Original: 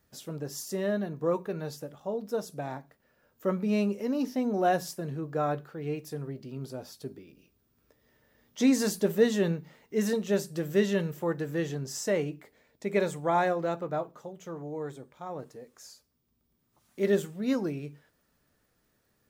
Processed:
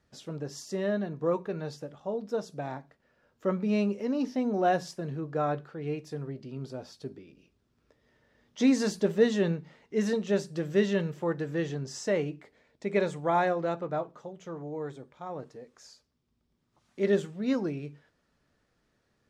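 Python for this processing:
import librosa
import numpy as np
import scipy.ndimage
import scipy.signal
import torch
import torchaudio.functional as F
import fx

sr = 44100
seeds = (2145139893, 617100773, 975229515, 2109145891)

y = scipy.signal.sosfilt(scipy.signal.butter(2, 5800.0, 'lowpass', fs=sr, output='sos'), x)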